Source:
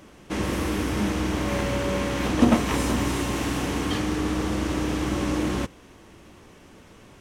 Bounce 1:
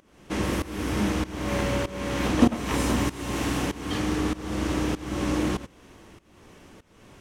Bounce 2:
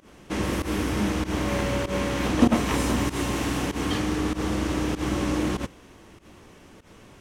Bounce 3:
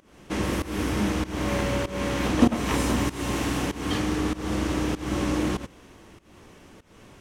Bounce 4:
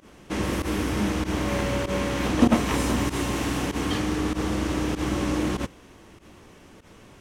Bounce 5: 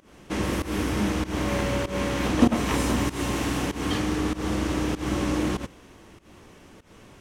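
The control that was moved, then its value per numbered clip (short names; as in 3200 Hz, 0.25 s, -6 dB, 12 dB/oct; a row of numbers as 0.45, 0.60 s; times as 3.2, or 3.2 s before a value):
pump, release: 452, 115, 274, 79, 186 ms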